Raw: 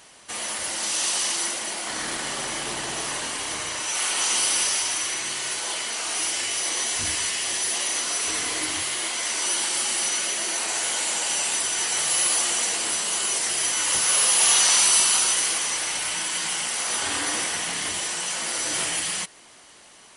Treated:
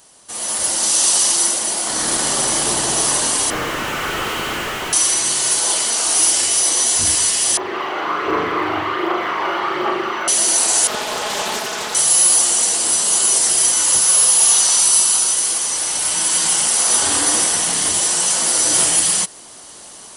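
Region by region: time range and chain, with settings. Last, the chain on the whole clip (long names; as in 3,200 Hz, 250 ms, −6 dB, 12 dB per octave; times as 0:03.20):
0:03.50–0:04.93: inverse Chebyshev low-pass filter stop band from 7,000 Hz, stop band 50 dB + flat-topped bell 760 Hz −8.5 dB 1.1 octaves + mid-hump overdrive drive 37 dB, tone 1,200 Hz, clips at −19.5 dBFS
0:07.57–0:10.28: loudspeaker in its box 130–2,300 Hz, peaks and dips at 230 Hz −7 dB, 380 Hz +9 dB, 1,200 Hz +9 dB + phase shifter 1.3 Hz, delay 1.5 ms, feedback 44% + flutter between parallel walls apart 6.7 metres, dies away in 0.59 s
0:10.87–0:11.95: band-pass filter 130–2,600 Hz + comb filter 4.7 ms, depth 92% + highs frequency-modulated by the lows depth 0.55 ms
whole clip: high-shelf EQ 7,800 Hz +7.5 dB; automatic gain control; parametric band 2,200 Hz −8.5 dB 1.2 octaves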